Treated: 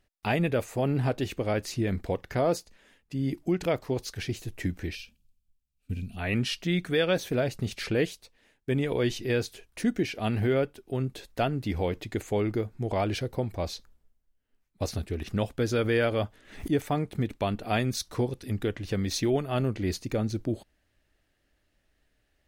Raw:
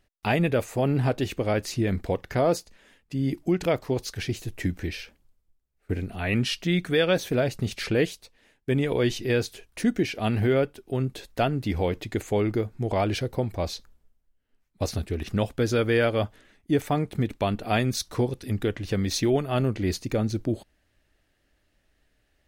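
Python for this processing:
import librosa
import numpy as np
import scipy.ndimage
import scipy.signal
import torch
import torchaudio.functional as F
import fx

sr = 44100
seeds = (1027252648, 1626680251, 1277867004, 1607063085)

y = fx.spec_box(x, sr, start_s=4.95, length_s=1.22, low_hz=270.0, high_hz=2300.0, gain_db=-15)
y = fx.pre_swell(y, sr, db_per_s=110.0, at=(15.8, 16.72))
y = y * librosa.db_to_amplitude(-3.0)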